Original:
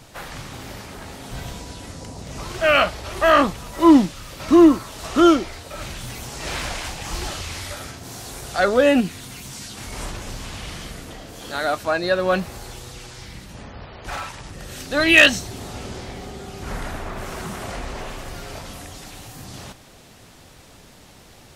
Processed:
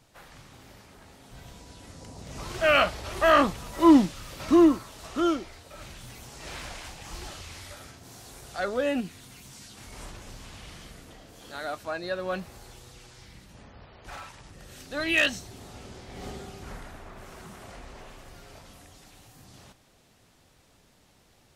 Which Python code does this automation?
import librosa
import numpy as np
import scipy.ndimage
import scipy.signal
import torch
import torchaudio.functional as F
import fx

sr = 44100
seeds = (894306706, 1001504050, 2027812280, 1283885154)

y = fx.gain(x, sr, db=fx.line((1.35, -15.0), (2.57, -4.5), (4.4, -4.5), (5.15, -11.5), (16.07, -11.5), (16.27, -2.5), (16.87, -14.0)))